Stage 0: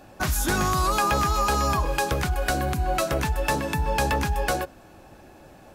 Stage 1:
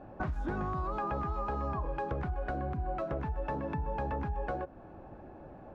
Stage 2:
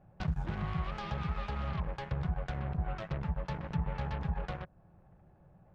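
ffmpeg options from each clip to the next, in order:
-af "lowpass=1.1k,acompressor=threshold=-33dB:ratio=4"
-af "aeval=exprs='0.075*(cos(1*acos(clip(val(0)/0.075,-1,1)))-cos(1*PI/2))+0.0237*(cos(5*acos(clip(val(0)/0.075,-1,1)))-cos(5*PI/2))+0.0335*(cos(7*acos(clip(val(0)/0.075,-1,1)))-cos(7*PI/2))':c=same,lowshelf=f=210:t=q:w=3:g=7,volume=-8.5dB"

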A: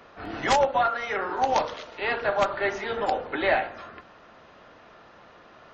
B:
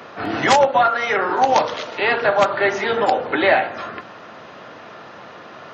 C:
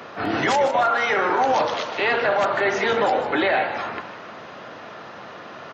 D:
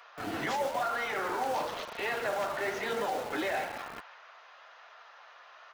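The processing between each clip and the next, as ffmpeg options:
-filter_complex "[0:a]highpass=f=100:w=0.5412,highpass=f=100:w=1.3066,asplit=2[a][b];[b]acompressor=threshold=-32dB:ratio=6,volume=2.5dB[c];[a][c]amix=inputs=2:normalize=0,volume=5dB"
-filter_complex "[0:a]alimiter=limit=-12dB:level=0:latency=1:release=14,asplit=2[a][b];[b]asplit=5[c][d][e][f][g];[c]adelay=153,afreqshift=78,volume=-11.5dB[h];[d]adelay=306,afreqshift=156,volume=-17.7dB[i];[e]adelay=459,afreqshift=234,volume=-23.9dB[j];[f]adelay=612,afreqshift=312,volume=-30.1dB[k];[g]adelay=765,afreqshift=390,volume=-36.3dB[l];[h][i][j][k][l]amix=inputs=5:normalize=0[m];[a][m]amix=inputs=2:normalize=0"
-filter_complex "[0:a]flanger=delay=4.2:depth=9.4:regen=-40:speed=1:shape=sinusoidal,acrossover=split=680[a][b];[a]acrusher=bits=5:mix=0:aa=0.000001[c];[c][b]amix=inputs=2:normalize=0,volume=-8.5dB"

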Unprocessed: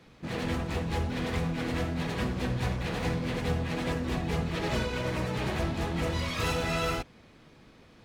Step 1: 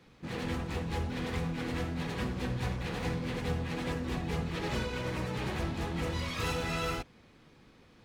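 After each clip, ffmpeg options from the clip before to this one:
-af "bandreject=f=640:w=12,volume=-3.5dB"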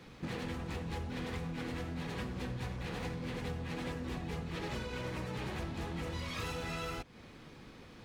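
-af "acompressor=threshold=-43dB:ratio=6,volume=6dB"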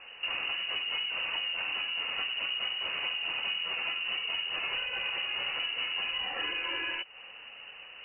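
-af "lowpass=f=2.6k:t=q:w=0.5098,lowpass=f=2.6k:t=q:w=0.6013,lowpass=f=2.6k:t=q:w=0.9,lowpass=f=2.6k:t=q:w=2.563,afreqshift=-3000,volume=5.5dB"

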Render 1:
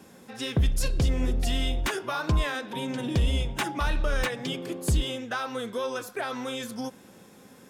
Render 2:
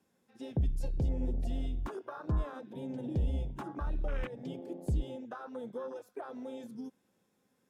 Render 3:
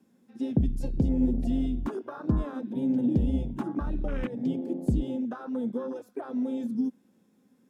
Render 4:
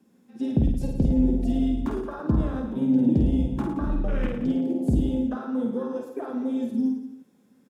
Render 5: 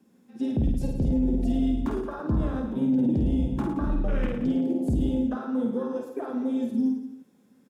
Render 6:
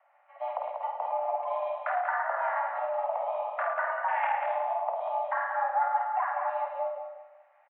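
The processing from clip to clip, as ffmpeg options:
-filter_complex "[0:a]afwtdn=0.0398,acrossover=split=480[a][b];[b]acompressor=threshold=-35dB:ratio=6[c];[a][c]amix=inputs=2:normalize=0,volume=-7dB"
-af "equalizer=f=240:w=1.4:g=14,volume=2dB"
-af "aecho=1:1:50|107.5|173.6|249.7|337.1:0.631|0.398|0.251|0.158|0.1,volume=2dB"
-af "alimiter=limit=-17dB:level=0:latency=1:release=12"
-af "aecho=1:1:190|380|570:0.501|0.13|0.0339,highpass=f=420:t=q:w=0.5412,highpass=f=420:t=q:w=1.307,lowpass=f=2.1k:t=q:w=0.5176,lowpass=f=2.1k:t=q:w=0.7071,lowpass=f=2.1k:t=q:w=1.932,afreqshift=340,volume=6.5dB"

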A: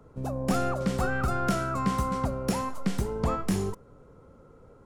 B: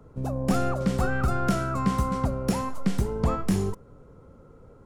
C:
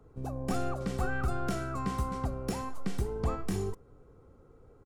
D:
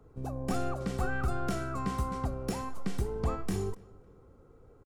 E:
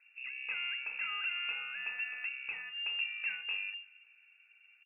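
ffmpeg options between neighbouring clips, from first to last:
-af "lowshelf=f=290:g=4.5"
-af "aecho=1:1:2.6:0.35,volume=-7dB"
-filter_complex "[0:a]asplit=2[a][b];[b]adelay=278,lowpass=f=3.5k:p=1,volume=-24dB,asplit=2[c][d];[d]adelay=278,lowpass=f=3.5k:p=1,volume=0.38[e];[a][c][e]amix=inputs=3:normalize=0"
-af "lowpass=f=2.4k:t=q:w=0.5098,lowpass=f=2.4k:t=q:w=0.6013,lowpass=f=2.4k:t=q:w=0.9,lowpass=f=2.4k:t=q:w=2.563,afreqshift=-2800,volume=-7dB"

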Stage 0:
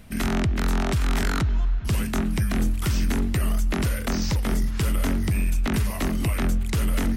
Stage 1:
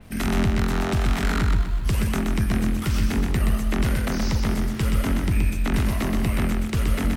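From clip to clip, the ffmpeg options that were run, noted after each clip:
-filter_complex "[0:a]acrossover=split=100[a][b];[a]acrusher=bits=7:mix=0:aa=0.000001[c];[c][b]amix=inputs=2:normalize=0,aecho=1:1:125|250|375|500|625:0.631|0.259|0.106|0.0435|0.0178,adynamicequalizer=threshold=0.00501:dfrequency=4100:dqfactor=0.7:tfrequency=4100:tqfactor=0.7:attack=5:release=100:ratio=0.375:range=2:mode=cutabove:tftype=highshelf"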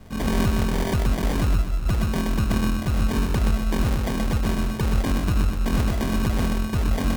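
-af "areverse,acompressor=mode=upward:threshold=-26dB:ratio=2.5,areverse,acrusher=samples=33:mix=1:aa=0.000001"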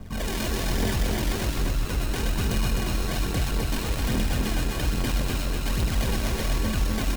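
-filter_complex "[0:a]acrossover=split=2100[a][b];[a]asoftclip=type=hard:threshold=-28.5dB[c];[c][b]amix=inputs=2:normalize=0,aphaser=in_gain=1:out_gain=1:delay=3.4:decay=0.51:speed=1.2:type=triangular,aecho=1:1:258|516|774|1032|1290|1548|1806:0.708|0.368|0.191|0.0995|0.0518|0.0269|0.014"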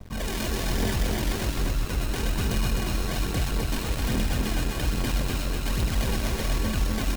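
-af "aeval=exprs='sgn(val(0))*max(abs(val(0))-0.00631,0)':c=same"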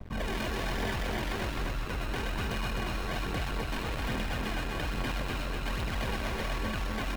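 -filter_complex "[0:a]bass=f=250:g=-1,treble=f=4k:g=-13,acrossover=split=590[a][b];[a]alimiter=level_in=4.5dB:limit=-24dB:level=0:latency=1,volume=-4.5dB[c];[c][b]amix=inputs=2:normalize=0"

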